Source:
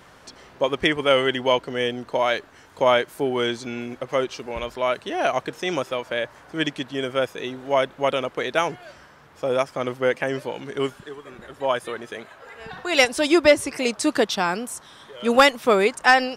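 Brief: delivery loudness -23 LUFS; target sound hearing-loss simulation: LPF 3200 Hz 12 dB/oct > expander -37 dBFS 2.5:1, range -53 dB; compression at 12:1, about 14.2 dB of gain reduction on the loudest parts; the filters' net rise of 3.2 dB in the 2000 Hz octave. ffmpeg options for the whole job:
-af "equalizer=f=2k:t=o:g=4.5,acompressor=threshold=-22dB:ratio=12,lowpass=3.2k,agate=range=-53dB:threshold=-37dB:ratio=2.5,volume=6dB"

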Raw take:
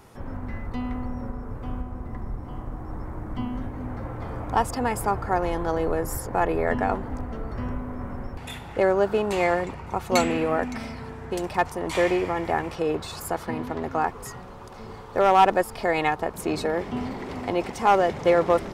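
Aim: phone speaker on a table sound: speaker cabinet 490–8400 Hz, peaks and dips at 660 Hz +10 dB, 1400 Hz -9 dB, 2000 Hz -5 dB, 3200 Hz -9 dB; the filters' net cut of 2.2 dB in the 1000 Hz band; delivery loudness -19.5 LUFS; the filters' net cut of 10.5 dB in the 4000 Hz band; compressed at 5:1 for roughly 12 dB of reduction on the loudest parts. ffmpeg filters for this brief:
-af "equalizer=f=1k:t=o:g=-8,equalizer=f=4k:t=o:g=-8,acompressor=threshold=-31dB:ratio=5,highpass=f=490:w=0.5412,highpass=f=490:w=1.3066,equalizer=f=660:t=q:w=4:g=10,equalizer=f=1.4k:t=q:w=4:g=-9,equalizer=f=2k:t=q:w=4:g=-5,equalizer=f=3.2k:t=q:w=4:g=-9,lowpass=f=8.4k:w=0.5412,lowpass=f=8.4k:w=1.3066,volume=17dB"

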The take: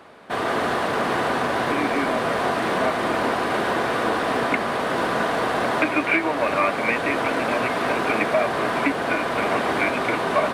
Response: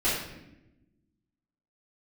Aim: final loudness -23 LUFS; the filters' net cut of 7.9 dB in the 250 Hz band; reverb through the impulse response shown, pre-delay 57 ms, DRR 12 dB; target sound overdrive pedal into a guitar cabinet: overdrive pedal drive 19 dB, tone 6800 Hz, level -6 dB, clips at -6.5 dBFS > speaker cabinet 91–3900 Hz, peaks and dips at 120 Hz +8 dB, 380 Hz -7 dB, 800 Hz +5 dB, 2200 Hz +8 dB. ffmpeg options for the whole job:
-filter_complex "[0:a]equalizer=f=250:t=o:g=-8.5,asplit=2[a][b];[1:a]atrim=start_sample=2205,adelay=57[c];[b][c]afir=irnorm=-1:irlink=0,volume=-24dB[d];[a][d]amix=inputs=2:normalize=0,asplit=2[e][f];[f]highpass=f=720:p=1,volume=19dB,asoftclip=type=tanh:threshold=-6.5dB[g];[e][g]amix=inputs=2:normalize=0,lowpass=f=6.8k:p=1,volume=-6dB,highpass=91,equalizer=f=120:t=q:w=4:g=8,equalizer=f=380:t=q:w=4:g=-7,equalizer=f=800:t=q:w=4:g=5,equalizer=f=2.2k:t=q:w=4:g=8,lowpass=f=3.9k:w=0.5412,lowpass=f=3.9k:w=1.3066,volume=-11dB"

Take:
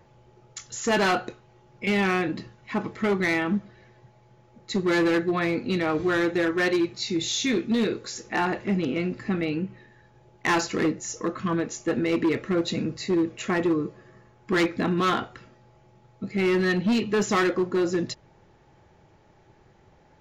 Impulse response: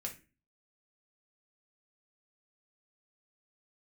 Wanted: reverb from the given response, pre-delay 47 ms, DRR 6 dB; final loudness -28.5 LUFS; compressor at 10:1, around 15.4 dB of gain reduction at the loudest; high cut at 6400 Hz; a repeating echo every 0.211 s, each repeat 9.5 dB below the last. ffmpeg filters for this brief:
-filter_complex "[0:a]lowpass=6.4k,acompressor=threshold=-36dB:ratio=10,aecho=1:1:211|422|633|844:0.335|0.111|0.0365|0.012,asplit=2[a][b];[1:a]atrim=start_sample=2205,adelay=47[c];[b][c]afir=irnorm=-1:irlink=0,volume=-5dB[d];[a][d]amix=inputs=2:normalize=0,volume=9.5dB"

